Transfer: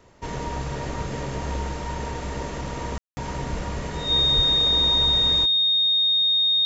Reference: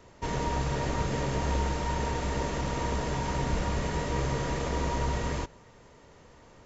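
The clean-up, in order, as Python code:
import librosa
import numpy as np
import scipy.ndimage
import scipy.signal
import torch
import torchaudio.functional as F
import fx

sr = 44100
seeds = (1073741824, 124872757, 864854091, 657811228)

y = fx.notch(x, sr, hz=3700.0, q=30.0)
y = fx.highpass(y, sr, hz=140.0, slope=24, at=(4.35, 4.47), fade=0.02)
y = fx.fix_ambience(y, sr, seeds[0], print_start_s=0.0, print_end_s=0.5, start_s=2.98, end_s=3.17)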